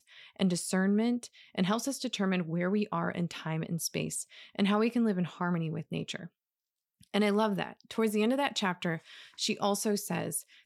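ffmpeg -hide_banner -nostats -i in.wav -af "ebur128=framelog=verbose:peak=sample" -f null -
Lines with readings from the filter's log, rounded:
Integrated loudness:
  I:         -31.5 LUFS
  Threshold: -41.7 LUFS
Loudness range:
  LRA:         1.9 LU
  Threshold: -52.0 LUFS
  LRA low:   -33.0 LUFS
  LRA high:  -31.1 LUFS
Sample peak:
  Peak:      -13.4 dBFS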